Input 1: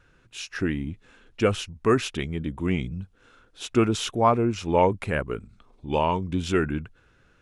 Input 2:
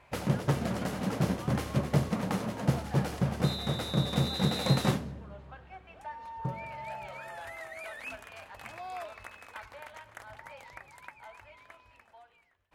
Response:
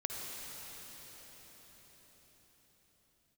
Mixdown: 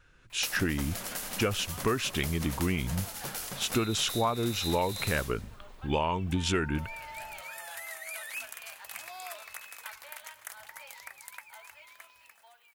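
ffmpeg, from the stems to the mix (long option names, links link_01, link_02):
-filter_complex "[0:a]dynaudnorm=framelen=190:gausssize=3:maxgain=7.5dB,volume=0dB[link_01];[1:a]aemphasis=mode=production:type=riaa,acompressor=threshold=-33dB:ratio=4,adelay=300,volume=1dB[link_02];[link_01][link_02]amix=inputs=2:normalize=0,equalizer=frequency=290:width=0.31:gain=-6.5,acompressor=threshold=-25dB:ratio=5"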